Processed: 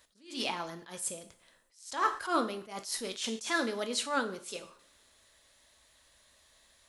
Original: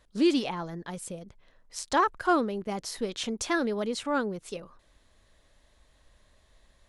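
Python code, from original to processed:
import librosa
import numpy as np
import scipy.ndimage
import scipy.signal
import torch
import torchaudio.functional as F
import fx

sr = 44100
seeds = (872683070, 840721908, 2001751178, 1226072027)

y = fx.tilt_eq(x, sr, slope=3.0)
y = fx.rev_double_slope(y, sr, seeds[0], early_s=0.47, late_s=2.2, knee_db=-27, drr_db=7.5)
y = fx.attack_slew(y, sr, db_per_s=140.0)
y = y * librosa.db_to_amplitude(-1.5)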